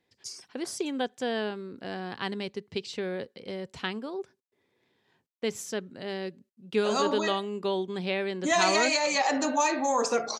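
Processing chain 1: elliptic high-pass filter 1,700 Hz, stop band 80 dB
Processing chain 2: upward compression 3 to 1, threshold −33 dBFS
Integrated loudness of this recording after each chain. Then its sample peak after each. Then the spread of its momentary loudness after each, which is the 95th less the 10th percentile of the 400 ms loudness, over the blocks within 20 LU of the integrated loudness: −34.0, −29.5 LKFS; −15.5, −9.5 dBFS; 19, 14 LU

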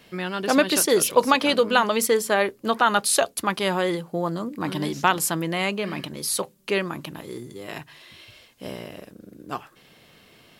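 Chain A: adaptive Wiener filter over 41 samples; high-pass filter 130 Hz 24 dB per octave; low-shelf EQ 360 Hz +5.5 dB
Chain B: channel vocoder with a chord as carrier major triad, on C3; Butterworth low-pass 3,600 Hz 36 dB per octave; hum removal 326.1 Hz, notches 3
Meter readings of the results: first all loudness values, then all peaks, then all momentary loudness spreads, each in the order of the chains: −22.5, −25.5 LKFS; −1.5, −6.5 dBFS; 19, 17 LU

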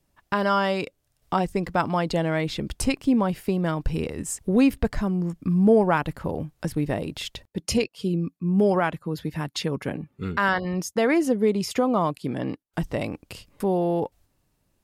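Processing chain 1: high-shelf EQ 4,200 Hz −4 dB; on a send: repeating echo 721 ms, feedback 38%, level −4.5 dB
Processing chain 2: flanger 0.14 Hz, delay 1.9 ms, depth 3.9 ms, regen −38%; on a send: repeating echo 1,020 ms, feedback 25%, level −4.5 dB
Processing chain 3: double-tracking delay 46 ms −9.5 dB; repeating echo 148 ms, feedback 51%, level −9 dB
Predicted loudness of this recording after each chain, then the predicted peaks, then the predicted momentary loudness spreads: −24.0, −28.0, −24.0 LKFS; −7.5, −11.0, −6.0 dBFS; 8, 10, 10 LU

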